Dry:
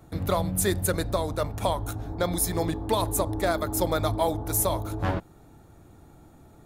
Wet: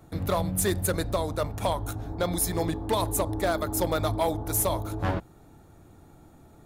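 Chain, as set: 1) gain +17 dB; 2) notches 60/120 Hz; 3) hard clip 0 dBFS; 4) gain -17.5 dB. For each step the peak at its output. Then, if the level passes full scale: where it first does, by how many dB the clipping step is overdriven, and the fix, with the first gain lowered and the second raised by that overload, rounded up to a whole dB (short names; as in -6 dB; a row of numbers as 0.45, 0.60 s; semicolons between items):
+5.5, +5.5, 0.0, -17.5 dBFS; step 1, 5.5 dB; step 1 +11 dB, step 4 -11.5 dB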